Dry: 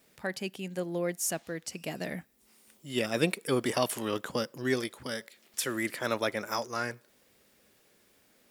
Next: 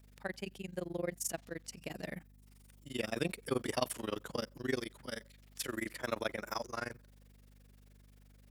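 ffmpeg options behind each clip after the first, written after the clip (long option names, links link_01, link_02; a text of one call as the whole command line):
ffmpeg -i in.wav -af "tremolo=f=23:d=0.974,aeval=exprs='val(0)+0.00141*(sin(2*PI*50*n/s)+sin(2*PI*2*50*n/s)/2+sin(2*PI*3*50*n/s)/3+sin(2*PI*4*50*n/s)/4+sin(2*PI*5*50*n/s)/5)':channel_layout=same,volume=-2.5dB" out.wav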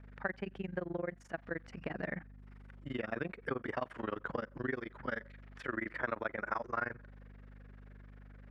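ffmpeg -i in.wav -af "acompressor=threshold=-42dB:ratio=6,lowpass=frequency=1600:width_type=q:width=2.1,volume=7dB" out.wav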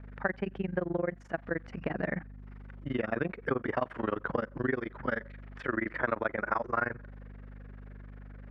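ffmpeg -i in.wav -af "aemphasis=mode=reproduction:type=75kf,volume=7dB" out.wav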